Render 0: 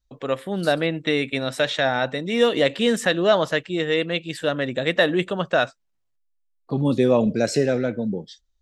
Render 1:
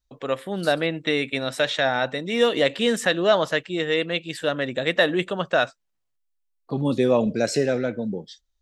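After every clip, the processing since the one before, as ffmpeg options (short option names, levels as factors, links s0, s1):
-af "lowshelf=f=320:g=-4"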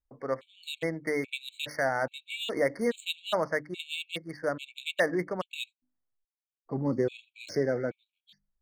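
-af "adynamicsmooth=sensitivity=4.5:basefreq=2100,bandreject=f=50:t=h:w=6,bandreject=f=100:t=h:w=6,bandreject=f=150:t=h:w=6,bandreject=f=200:t=h:w=6,bandreject=f=250:t=h:w=6,bandreject=f=300:t=h:w=6,afftfilt=real='re*gt(sin(2*PI*1.2*pts/sr)*(1-2*mod(floor(b*sr/1024/2200),2)),0)':imag='im*gt(sin(2*PI*1.2*pts/sr)*(1-2*mod(floor(b*sr/1024/2200),2)),0)':win_size=1024:overlap=0.75,volume=0.531"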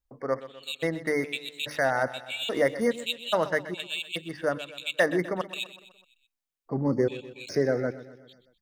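-af "aecho=1:1:126|252|378|504|630:0.178|0.0942|0.05|0.0265|0.014,volume=1.41"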